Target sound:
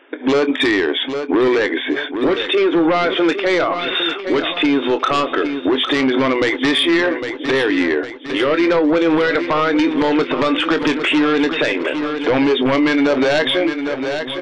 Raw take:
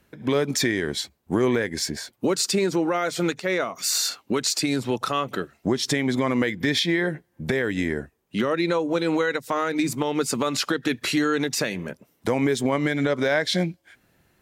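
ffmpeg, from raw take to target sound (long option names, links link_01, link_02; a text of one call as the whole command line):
ffmpeg -i in.wav -filter_complex "[0:a]afftfilt=real='re*between(b*sr/4096,250,3700)':imag='im*between(b*sr/4096,250,3700)':win_size=4096:overlap=0.75,aeval=exprs='0.335*sin(PI/2*2.51*val(0)/0.335)':channel_layout=same,asplit=2[link_01][link_02];[link_02]adelay=24,volume=-12.5dB[link_03];[link_01][link_03]amix=inputs=2:normalize=0,aecho=1:1:806|1612|2418|3224|4030:0.2|0.0978|0.0479|0.0235|0.0115,alimiter=level_in=13.5dB:limit=-1dB:release=50:level=0:latency=1,volume=-8.5dB" out.wav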